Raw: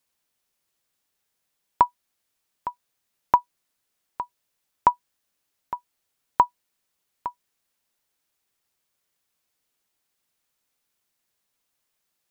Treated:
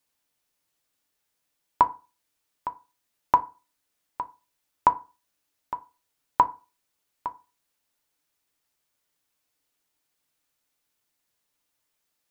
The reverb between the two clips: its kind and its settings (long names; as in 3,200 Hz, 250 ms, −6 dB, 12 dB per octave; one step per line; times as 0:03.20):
feedback delay network reverb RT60 0.31 s, low-frequency decay 1.05×, high-frequency decay 0.6×, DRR 8 dB
level −1 dB